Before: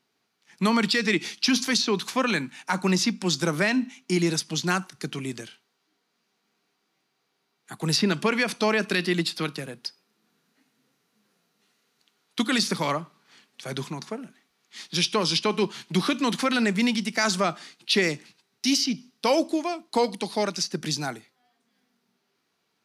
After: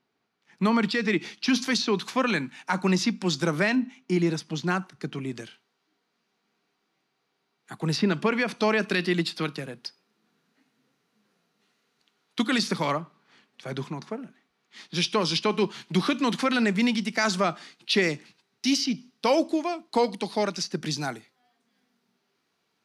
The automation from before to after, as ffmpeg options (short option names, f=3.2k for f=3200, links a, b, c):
-af "asetnsamples=n=441:p=0,asendcmd='1.48 lowpass f 4000;3.75 lowpass f 1700;5.36 lowpass f 4200;7.8 lowpass f 2300;8.58 lowpass f 4300;12.98 lowpass f 2200;14.97 lowpass f 4700;20.97 lowpass f 8500',lowpass=f=2k:p=1"